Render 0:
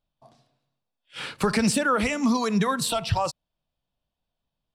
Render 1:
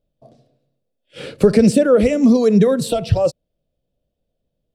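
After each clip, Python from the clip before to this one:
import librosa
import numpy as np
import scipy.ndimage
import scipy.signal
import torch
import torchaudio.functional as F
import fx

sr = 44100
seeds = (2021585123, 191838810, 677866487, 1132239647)

y = fx.low_shelf_res(x, sr, hz=710.0, db=10.0, q=3.0)
y = F.gain(torch.from_numpy(y), -1.0).numpy()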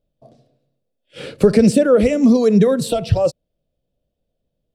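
y = x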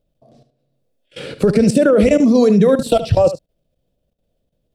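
y = fx.level_steps(x, sr, step_db=19)
y = y + 10.0 ** (-12.5 / 20.0) * np.pad(y, (int(73 * sr / 1000.0), 0))[:len(y)]
y = F.gain(torch.from_numpy(y), 8.0).numpy()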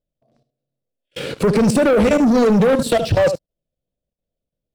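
y = fx.leveller(x, sr, passes=3)
y = F.gain(torch.from_numpy(y), -8.0).numpy()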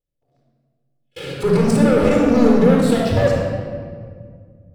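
y = fx.room_shoebox(x, sr, seeds[0], volume_m3=3100.0, walls='mixed', distance_m=4.1)
y = F.gain(torch.from_numpy(y), -7.5).numpy()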